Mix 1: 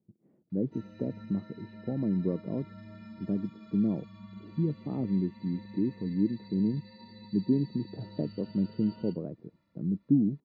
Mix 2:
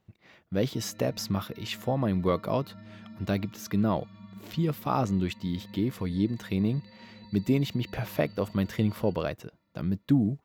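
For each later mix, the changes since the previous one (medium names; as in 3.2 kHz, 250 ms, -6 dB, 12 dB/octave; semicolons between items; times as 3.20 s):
speech: remove Butterworth band-pass 240 Hz, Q 1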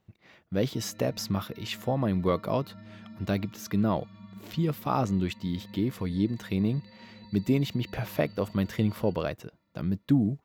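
no change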